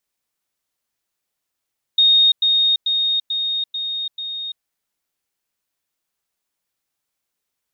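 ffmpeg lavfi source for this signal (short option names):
-f lavfi -i "aevalsrc='pow(10,(-10-3*floor(t/0.44))/20)*sin(2*PI*3710*t)*clip(min(mod(t,0.44),0.34-mod(t,0.44))/0.005,0,1)':d=2.64:s=44100"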